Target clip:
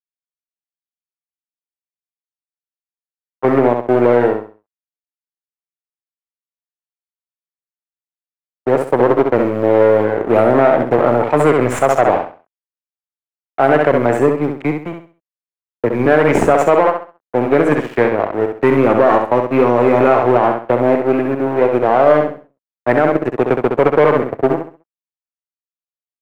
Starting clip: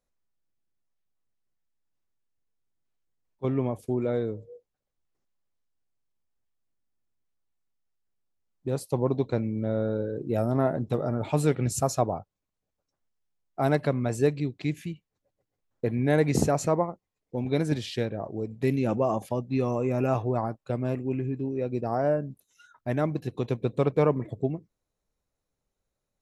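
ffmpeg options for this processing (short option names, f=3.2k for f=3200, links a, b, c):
-filter_complex "[0:a]equalizer=f=2k:t=o:w=1:g=5,equalizer=f=4k:t=o:w=1:g=-11,equalizer=f=8k:t=o:w=1:g=9,aeval=exprs='sgn(val(0))*max(abs(val(0))-0.0119,0)':c=same,asettb=1/sr,asplit=3[a][b][c];[a]atrim=end=14.194[d];[b]atrim=start=14.19:end=16.06,asetpts=PTS-STARTPTS,afade=t=in:d=0.004:c=qsin,afade=t=out:st=1.866:d=0.004:c=qsin,acrossover=split=280[e][f];[f]acompressor=threshold=-46dB:ratio=1.5[g];[e][g]amix=inputs=2:normalize=0[h];[c]atrim=start=16.056[i];[d][h]acrossfade=d=0.004:c1=hsin:c2=qsin[j];[j][i]acrossfade=d=0.004:c1=qsin:c2=hsin,aeval=exprs='(tanh(14.1*val(0)+0.6)-tanh(0.6))/14.1':c=same,acrusher=bits=7:mode=log:mix=0:aa=0.000001,acrossover=split=320 2500:gain=0.158 1 0.0708[k][l][m];[k][l][m]amix=inputs=3:normalize=0,asplit=2[n][o];[o]aecho=0:1:66|132|198|264:0.501|0.145|0.0421|0.0122[p];[n][p]amix=inputs=2:normalize=0,alimiter=level_in=24.5dB:limit=-1dB:release=50:level=0:latency=1,volume=-1dB"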